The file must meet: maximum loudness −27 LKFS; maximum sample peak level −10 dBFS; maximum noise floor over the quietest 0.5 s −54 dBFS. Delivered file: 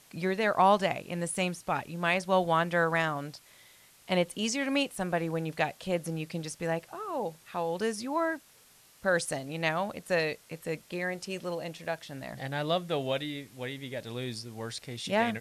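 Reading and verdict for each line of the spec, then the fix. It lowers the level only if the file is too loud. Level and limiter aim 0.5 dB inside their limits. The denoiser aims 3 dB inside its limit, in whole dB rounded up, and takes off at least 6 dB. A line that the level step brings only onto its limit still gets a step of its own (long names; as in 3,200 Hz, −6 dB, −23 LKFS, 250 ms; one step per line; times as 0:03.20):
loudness −31.0 LKFS: in spec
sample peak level −12.5 dBFS: in spec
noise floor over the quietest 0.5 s −59 dBFS: in spec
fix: no processing needed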